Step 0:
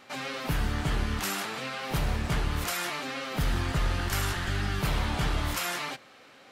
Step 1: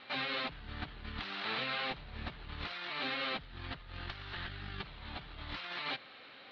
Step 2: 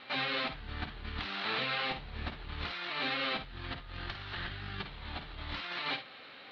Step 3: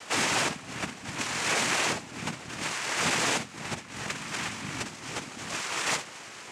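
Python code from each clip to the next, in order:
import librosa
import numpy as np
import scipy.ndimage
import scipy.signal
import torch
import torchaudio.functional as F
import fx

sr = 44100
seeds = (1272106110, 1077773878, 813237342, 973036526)

y1 = scipy.signal.sosfilt(scipy.signal.ellip(4, 1.0, 50, 4100.0, 'lowpass', fs=sr, output='sos'), x)
y1 = fx.high_shelf(y1, sr, hz=2500.0, db=10.5)
y1 = fx.over_compress(y1, sr, threshold_db=-33.0, ratio=-0.5)
y1 = y1 * librosa.db_to_amplitude(-7.5)
y2 = fx.room_early_taps(y1, sr, ms=(52, 66), db=(-10.0, -16.5))
y2 = y2 * librosa.db_to_amplitude(2.5)
y3 = fx.noise_vocoder(y2, sr, seeds[0], bands=4)
y3 = y3 * librosa.db_to_amplitude(7.5)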